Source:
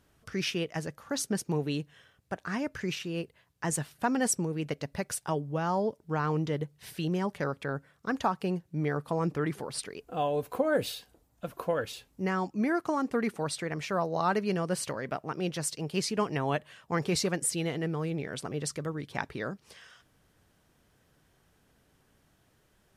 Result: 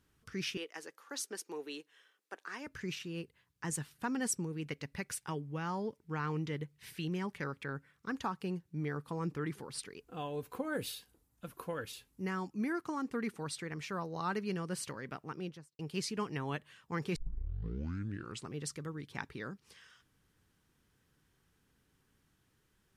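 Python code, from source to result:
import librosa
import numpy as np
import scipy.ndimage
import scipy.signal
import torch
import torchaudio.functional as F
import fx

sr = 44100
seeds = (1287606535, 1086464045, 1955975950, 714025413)

y = fx.highpass(x, sr, hz=350.0, slope=24, at=(0.57, 2.67))
y = fx.peak_eq(y, sr, hz=2200.0, db=5.5, octaves=0.77, at=(4.68, 8.08))
y = fx.peak_eq(y, sr, hz=11000.0, db=6.5, octaves=0.56, at=(10.6, 12.73))
y = fx.studio_fade_out(y, sr, start_s=15.29, length_s=0.5)
y = fx.edit(y, sr, fx.tape_start(start_s=17.16, length_s=1.39), tone=tone)
y = fx.peak_eq(y, sr, hz=640.0, db=-11.0, octaves=0.58)
y = F.gain(torch.from_numpy(y), -6.0).numpy()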